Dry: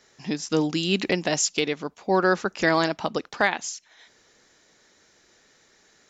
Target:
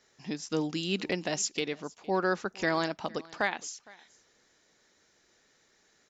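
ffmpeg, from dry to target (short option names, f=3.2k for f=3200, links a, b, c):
-af "aecho=1:1:461:0.0668,volume=-7.5dB"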